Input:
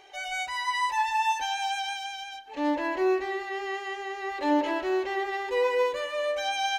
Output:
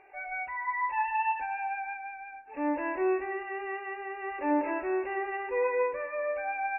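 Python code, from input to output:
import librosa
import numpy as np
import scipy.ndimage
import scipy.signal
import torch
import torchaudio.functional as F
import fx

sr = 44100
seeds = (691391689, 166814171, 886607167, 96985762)

y = fx.brickwall_lowpass(x, sr, high_hz=2800.0)
y = y * 10.0 ** (-3.0 / 20.0)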